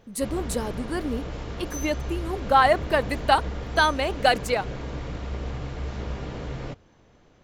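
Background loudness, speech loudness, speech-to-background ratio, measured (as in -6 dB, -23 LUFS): -34.5 LUFS, -24.5 LUFS, 10.0 dB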